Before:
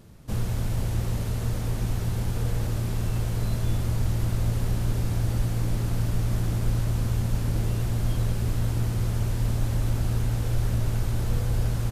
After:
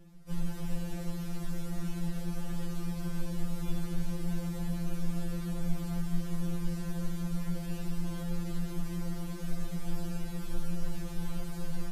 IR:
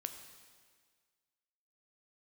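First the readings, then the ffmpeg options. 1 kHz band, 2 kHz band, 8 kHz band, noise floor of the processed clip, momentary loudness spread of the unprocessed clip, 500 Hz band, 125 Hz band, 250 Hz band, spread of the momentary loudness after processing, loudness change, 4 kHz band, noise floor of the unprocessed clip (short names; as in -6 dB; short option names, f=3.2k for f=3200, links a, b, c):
-8.5 dB, -8.0 dB, -8.5 dB, -38 dBFS, 2 LU, -8.0 dB, -12.5 dB, -1.5 dB, 4 LU, -10.0 dB, -8.0 dB, -29 dBFS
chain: -filter_complex "[0:a]lowshelf=f=130:g=8.5[a];[1:a]atrim=start_sample=2205[b];[a][b]afir=irnorm=-1:irlink=0,afftfilt=real='re*2.83*eq(mod(b,8),0)':imag='im*2.83*eq(mod(b,8),0)':win_size=2048:overlap=0.75,volume=-4dB"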